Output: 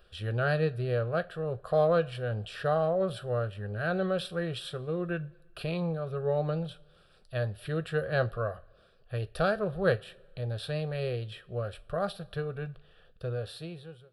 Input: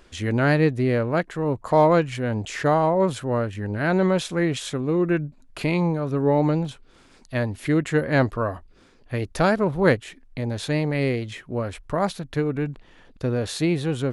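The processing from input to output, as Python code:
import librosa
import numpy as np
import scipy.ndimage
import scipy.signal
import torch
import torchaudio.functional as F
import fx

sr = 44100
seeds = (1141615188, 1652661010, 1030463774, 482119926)

y = fx.fade_out_tail(x, sr, length_s=1.11)
y = fx.fixed_phaser(y, sr, hz=1400.0, stages=8)
y = fx.rev_double_slope(y, sr, seeds[0], early_s=0.22, late_s=1.5, knee_db=-21, drr_db=12.0)
y = y * librosa.db_to_amplitude(-5.5)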